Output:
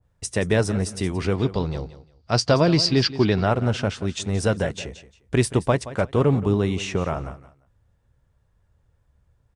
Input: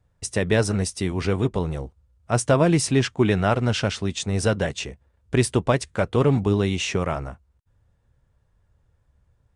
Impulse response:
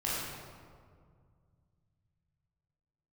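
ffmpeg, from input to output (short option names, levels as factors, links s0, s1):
-filter_complex "[0:a]asettb=1/sr,asplit=3[s0][s1][s2];[s0]atrim=end=1.354[s3];[s1]atrim=start=1.35:end=3.46,asetpts=PTS-STARTPTS,afade=t=in:d=0.004:c=qsin,afade=t=out:st=2.106:d=0.004:c=qsin,lowpass=f=4700:t=q:w=13[s4];[s2]atrim=start=3.456[s5];[s3][s4]acrossfade=d=0.004:c1=hsin:c2=qsin[s6];[s6][s5]acrossfade=d=0.004:c1=qsin:c2=hsin,aecho=1:1:175|350:0.168|0.0369,adynamicequalizer=threshold=0.0158:dfrequency=1700:dqfactor=0.7:tfrequency=1700:tqfactor=0.7:attack=5:release=100:ratio=0.375:range=3:mode=cutabove:tftype=highshelf"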